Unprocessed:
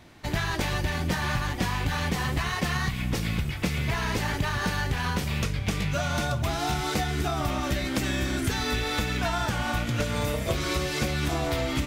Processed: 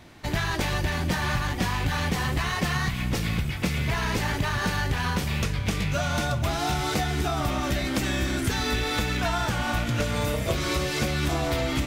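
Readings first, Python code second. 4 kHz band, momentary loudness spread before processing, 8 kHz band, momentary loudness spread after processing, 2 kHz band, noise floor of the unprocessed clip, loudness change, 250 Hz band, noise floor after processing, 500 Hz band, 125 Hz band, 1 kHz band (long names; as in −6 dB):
+1.5 dB, 1 LU, +1.5 dB, 1 LU, +1.5 dB, −32 dBFS, +1.5 dB, +1.0 dB, −30 dBFS, +1.5 dB, +1.5 dB, +1.5 dB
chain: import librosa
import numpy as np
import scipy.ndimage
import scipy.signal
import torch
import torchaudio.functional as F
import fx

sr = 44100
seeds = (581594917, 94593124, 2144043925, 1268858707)

p1 = 10.0 ** (-30.5 / 20.0) * np.tanh(x / 10.0 ** (-30.5 / 20.0))
p2 = x + F.gain(torch.from_numpy(p1), -10.0).numpy()
y = p2 + 10.0 ** (-15.5 / 20.0) * np.pad(p2, (int(491 * sr / 1000.0), 0))[:len(p2)]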